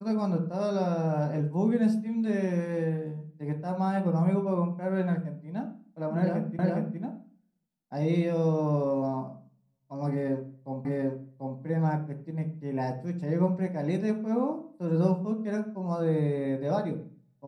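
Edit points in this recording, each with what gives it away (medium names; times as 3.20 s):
6.59 s: repeat of the last 0.41 s
10.85 s: repeat of the last 0.74 s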